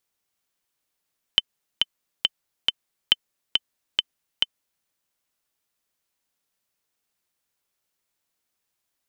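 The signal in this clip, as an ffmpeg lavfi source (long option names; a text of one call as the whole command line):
ffmpeg -f lavfi -i "aevalsrc='pow(10,(-2-3.5*gte(mod(t,4*60/138),60/138))/20)*sin(2*PI*3060*mod(t,60/138))*exp(-6.91*mod(t,60/138)/0.03)':duration=3.47:sample_rate=44100" out.wav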